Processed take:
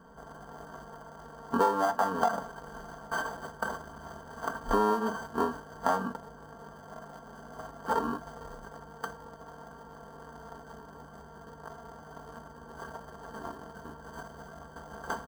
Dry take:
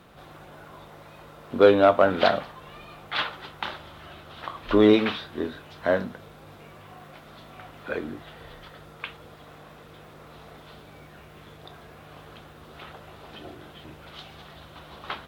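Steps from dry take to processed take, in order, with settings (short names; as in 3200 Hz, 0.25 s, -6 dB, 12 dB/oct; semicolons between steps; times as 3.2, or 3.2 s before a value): sample sorter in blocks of 32 samples; comb 4.4 ms, depth 76%; formant shift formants +2 st; in parallel at -7 dB: bit-crush 6-bit; on the sum: compressor 16:1, threshold -20 dBFS, peak gain reduction 17 dB; resonant high shelf 1600 Hz -12.5 dB, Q 3; gain -3.5 dB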